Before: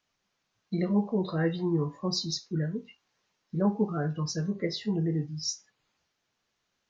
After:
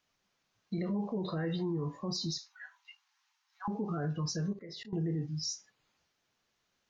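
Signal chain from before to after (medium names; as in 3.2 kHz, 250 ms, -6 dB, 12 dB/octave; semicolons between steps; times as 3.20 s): 2.38–3.68 s: steep high-pass 780 Hz 96 dB/octave; 4.53–4.93 s: level held to a coarse grid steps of 23 dB; peak limiter -27 dBFS, peak gain reduction 11.5 dB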